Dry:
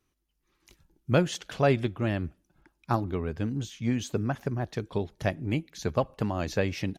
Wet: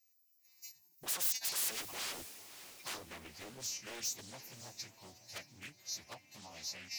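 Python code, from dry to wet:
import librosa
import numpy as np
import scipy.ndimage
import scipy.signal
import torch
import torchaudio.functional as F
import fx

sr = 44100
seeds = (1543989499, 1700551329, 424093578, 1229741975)

p1 = fx.freq_snap(x, sr, grid_st=2)
p2 = fx.doppler_pass(p1, sr, speed_mps=19, closest_m=14.0, pass_at_s=1.67)
p3 = scipy.signal.sosfilt(scipy.signal.butter(2, 62.0, 'highpass', fs=sr, output='sos'), p2)
p4 = fx.peak_eq(p3, sr, hz=1300.0, db=-14.0, octaves=0.62)
p5 = fx.level_steps(p4, sr, step_db=13)
p6 = p4 + (p5 * 10.0 ** (3.0 / 20.0))
p7 = fx.fixed_phaser(p6, sr, hz=2200.0, stages=8)
p8 = 10.0 ** (-35.5 / 20.0) * (np.abs((p7 / 10.0 ** (-35.5 / 20.0) + 3.0) % 4.0 - 2.0) - 1.0)
p9 = fx.riaa(p8, sr, side='recording')
p10 = p9 + fx.echo_diffused(p9, sr, ms=578, feedback_pct=41, wet_db=-13.5, dry=0)
p11 = fx.doppler_dist(p10, sr, depth_ms=0.56)
y = p11 * 10.0 ** (-4.0 / 20.0)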